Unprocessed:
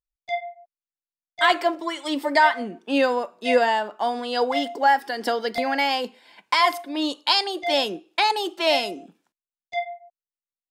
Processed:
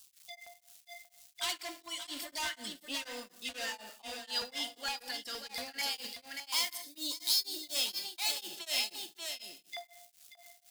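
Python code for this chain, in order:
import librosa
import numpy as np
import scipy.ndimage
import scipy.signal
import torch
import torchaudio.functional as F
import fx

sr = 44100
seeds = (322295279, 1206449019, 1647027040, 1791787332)

y = fx.block_float(x, sr, bits=5, at=(5.93, 8.5))
y = fx.dmg_crackle(y, sr, seeds[0], per_s=550.0, level_db=-42.0)
y = fx.filter_lfo_notch(y, sr, shape='saw_down', hz=4.3, low_hz=660.0, high_hz=2200.0, q=0.94)
y = np.clip(y, -10.0 ** (-21.5 / 20.0), 10.0 ** (-21.5 / 20.0))
y = fx.high_shelf(y, sr, hz=4200.0, db=9.5)
y = y + 10.0 ** (-6.0 / 20.0) * np.pad(y, (int(584 * sr / 1000.0), 0))[:len(y)]
y = fx.rev_gated(y, sr, seeds[1], gate_ms=290, shape='falling', drr_db=8.0)
y = fx.spec_box(y, sr, start_s=6.82, length_s=0.93, low_hz=650.0, high_hz=3500.0, gain_db=-9)
y = fx.tone_stack(y, sr, knobs='5-5-5')
y = y * np.abs(np.cos(np.pi * 4.1 * np.arange(len(y)) / sr))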